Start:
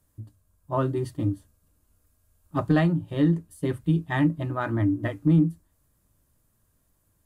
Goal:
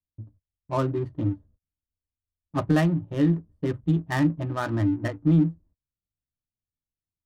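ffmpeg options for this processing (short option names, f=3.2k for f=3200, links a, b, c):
-af "adynamicsmooth=sensitivity=7.5:basefreq=510,agate=range=-26dB:threshold=-53dB:ratio=16:detection=peak"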